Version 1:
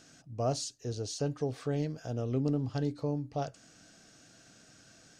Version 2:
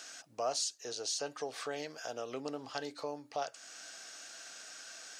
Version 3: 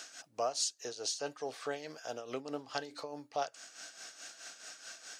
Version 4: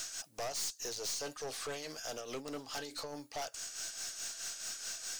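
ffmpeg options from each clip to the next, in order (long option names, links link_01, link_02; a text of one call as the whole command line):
ffmpeg -i in.wav -af "highpass=810,acompressor=threshold=-56dB:ratio=1.5,volume=11dB" out.wav
ffmpeg -i in.wav -af "tremolo=f=4.7:d=0.68,volume=2.5dB" out.wav
ffmpeg -i in.wav -af "crystalizer=i=3:c=0,aeval=exprs='(tanh(79.4*val(0)+0.25)-tanh(0.25))/79.4':channel_layout=same,volume=2dB" out.wav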